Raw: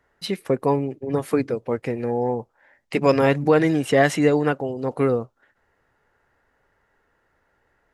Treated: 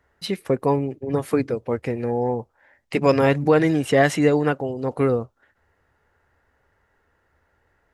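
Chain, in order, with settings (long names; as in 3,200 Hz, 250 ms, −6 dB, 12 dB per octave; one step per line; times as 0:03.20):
parametric band 76 Hz +10 dB 0.68 octaves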